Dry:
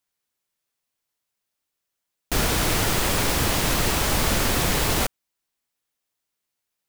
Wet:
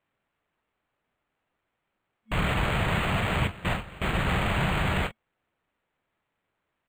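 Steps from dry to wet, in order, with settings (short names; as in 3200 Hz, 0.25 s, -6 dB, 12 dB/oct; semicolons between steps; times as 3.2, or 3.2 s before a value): FFT band-reject 220–2200 Hz; 3.47–4.25 gate with hold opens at -12 dBFS; in parallel at 0 dB: limiter -23 dBFS, peak gain reduction 12.5 dB; on the sum: notch comb 640 Hz; on a send: early reflections 23 ms -10 dB, 44 ms -13 dB; on the sum: decimation joined by straight lines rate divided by 8×; gain -2 dB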